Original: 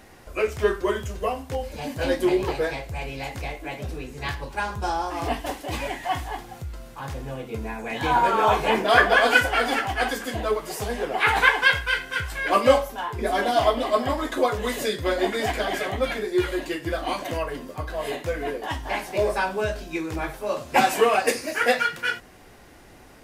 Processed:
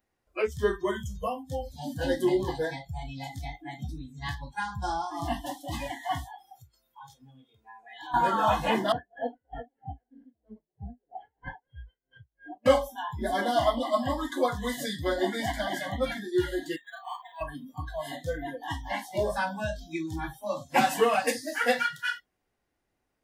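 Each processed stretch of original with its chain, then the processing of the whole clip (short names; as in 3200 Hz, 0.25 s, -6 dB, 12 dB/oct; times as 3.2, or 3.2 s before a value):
6.24–8.14 low shelf 220 Hz -11.5 dB + compressor 2:1, threshold -38 dBFS
8.92–12.66 CVSD 32 kbps + running mean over 36 samples + dB-linear tremolo 3.1 Hz, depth 24 dB
16.76–17.41 HPF 840 Hz 24 dB/oct + air absorption 58 m + decimation joined by straight lines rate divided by 8×
whole clip: dynamic EQ 180 Hz, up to +5 dB, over -42 dBFS, Q 1.3; spectral noise reduction 26 dB; gain -4.5 dB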